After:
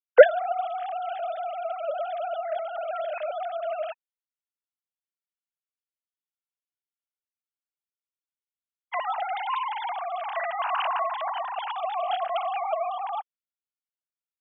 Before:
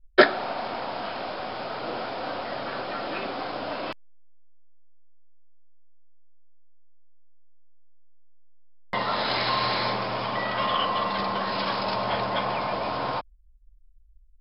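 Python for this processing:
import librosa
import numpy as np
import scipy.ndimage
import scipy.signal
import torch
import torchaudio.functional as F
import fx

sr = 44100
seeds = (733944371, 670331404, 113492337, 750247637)

y = fx.sine_speech(x, sr)
y = fx.graphic_eq(y, sr, hz=(500, 1000, 2000), db=(4, -5, -8))
y = F.gain(torch.from_numpy(y), 2.5).numpy()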